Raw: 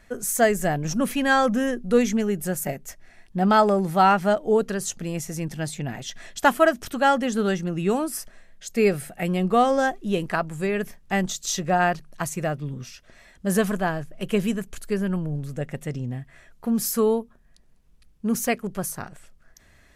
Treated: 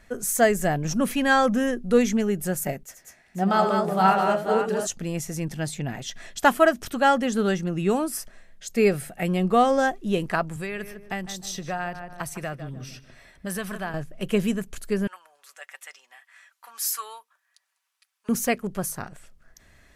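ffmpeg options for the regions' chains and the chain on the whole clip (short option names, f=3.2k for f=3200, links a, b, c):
-filter_complex "[0:a]asettb=1/sr,asplit=3[a][b][c];[a]atrim=end=2.834[d];[b]atrim=start=2.83:end=4.87,asetpts=PTS-STARTPTS,afade=t=in:d=0.004:c=qsin,afade=t=out:st=2.036:d=0.004:c=qsin,highpass=f=140:p=1,aecho=1:1:80|194|494:0.398|0.631|0.447,atrim=end_sample=89964,flanger=delay=5.1:depth=9.7:regen=58:speed=1.6:shape=sinusoidal[e];[c]atrim=start=4.866[f];[d][e]acrossfade=d=0.004:c1=hsin:c2=qsin[g];[g][f]acrossfade=d=0.004:c1=qsin:c2=hsin,asettb=1/sr,asplit=3[h][i][j];[h]atrim=end=10.564[k];[i]atrim=start=10.56:end=13.94,asetpts=PTS-STARTPTS,afade=t=in:d=0.004:c=qsin,afade=t=out:st=3.376:d=0.004:c=qsin,bandreject=f=6.9k:w=5.6,asplit=2[l][m];[m]adelay=152,lowpass=f=2k:p=1,volume=-12dB,asplit=2[n][o];[o]adelay=152,lowpass=f=2k:p=1,volume=0.28,asplit=2[p][q];[q]adelay=152,lowpass=f=2k:p=1,volume=0.28[r];[l][n][p][r]amix=inputs=4:normalize=0,atrim=end_sample=149058,acrossover=split=99|920[s][t][u];[s]acompressor=threshold=-44dB:ratio=4[v];[t]acompressor=threshold=-34dB:ratio=4[w];[u]acompressor=threshold=-32dB:ratio=4[x];[v][w][x]amix=inputs=3:normalize=0[y];[j]atrim=start=13.936[z];[k][y]acrossfade=d=0.004:c1=hsin:c2=qsin[aa];[aa][z]acrossfade=d=0.004:c1=qsin:c2=hsin,asettb=1/sr,asplit=3[ab][ac][ad];[ab]atrim=end=15.074[ae];[ac]atrim=start=15.07:end=18.29,asetpts=PTS-STARTPTS,afade=t=in:d=0.004:c=qsin,afade=t=out:st=3.216:d=0.004:c=qsin,highpass=f=990:w=0.5412,highpass=f=990:w=1.3066,aecho=1:1:5.2:0.4,atrim=end_sample=142002[af];[ad]atrim=start=18.286[ag];[ae][af]acrossfade=d=0.004:c1=hsin:c2=qsin[ah];[ah][ag]acrossfade=d=0.004:c1=qsin:c2=hsin"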